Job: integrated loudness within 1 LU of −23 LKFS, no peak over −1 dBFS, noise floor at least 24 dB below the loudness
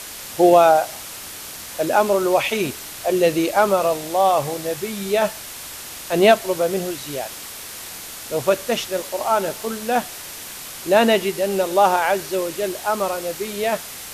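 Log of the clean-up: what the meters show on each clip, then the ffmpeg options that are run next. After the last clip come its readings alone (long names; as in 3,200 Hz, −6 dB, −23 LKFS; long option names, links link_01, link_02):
background noise floor −35 dBFS; target noise floor −44 dBFS; integrated loudness −20.0 LKFS; sample peak −3.5 dBFS; target loudness −23.0 LKFS
→ -af "afftdn=noise_reduction=9:noise_floor=-35"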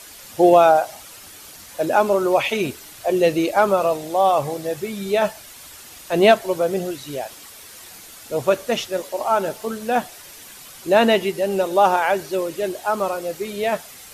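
background noise floor −42 dBFS; target noise floor −44 dBFS
→ -af "afftdn=noise_reduction=6:noise_floor=-42"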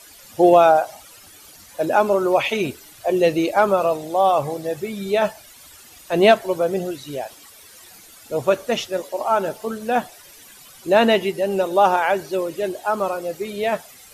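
background noise floor −46 dBFS; integrated loudness −20.0 LKFS; sample peak −3.5 dBFS; target loudness −23.0 LKFS
→ -af "volume=-3dB"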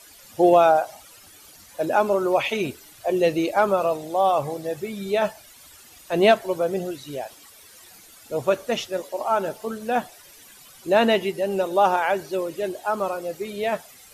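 integrated loudness −23.0 LKFS; sample peak −6.5 dBFS; background noise floor −49 dBFS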